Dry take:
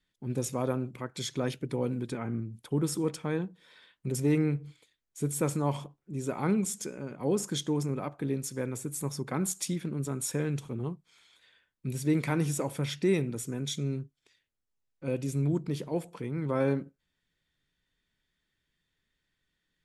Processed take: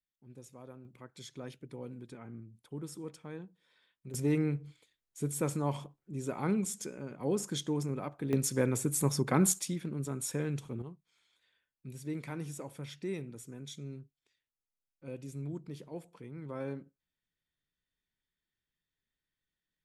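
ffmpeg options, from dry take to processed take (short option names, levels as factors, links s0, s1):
-af "asetnsamples=n=441:p=0,asendcmd='0.85 volume volume -13dB;4.14 volume volume -3.5dB;8.33 volume volume 4.5dB;9.59 volume volume -3.5dB;10.82 volume volume -11.5dB',volume=0.1"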